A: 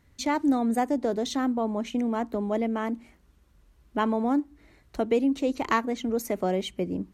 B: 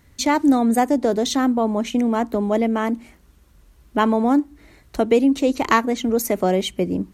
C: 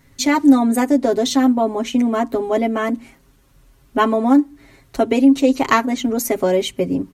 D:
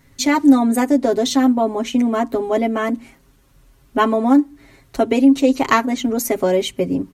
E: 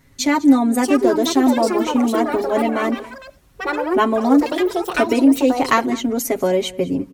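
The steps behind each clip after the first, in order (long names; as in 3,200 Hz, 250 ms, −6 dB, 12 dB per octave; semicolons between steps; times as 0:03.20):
high-shelf EQ 6,300 Hz +6 dB; level +7.5 dB
comb filter 7.4 ms, depth 88%
no processing that can be heard
single-tap delay 203 ms −20 dB; delay with pitch and tempo change per echo 686 ms, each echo +5 semitones, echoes 3, each echo −6 dB; level −1 dB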